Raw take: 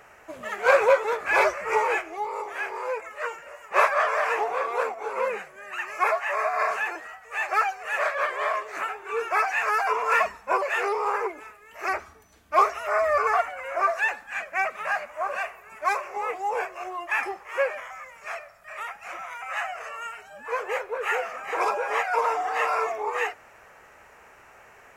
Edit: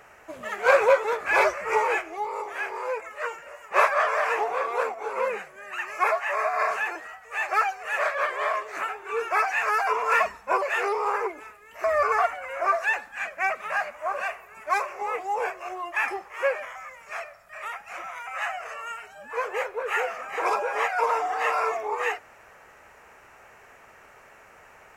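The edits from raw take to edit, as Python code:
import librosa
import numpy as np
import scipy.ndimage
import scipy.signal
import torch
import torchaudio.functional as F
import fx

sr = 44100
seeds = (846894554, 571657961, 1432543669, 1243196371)

y = fx.edit(x, sr, fx.cut(start_s=11.84, length_s=1.15), tone=tone)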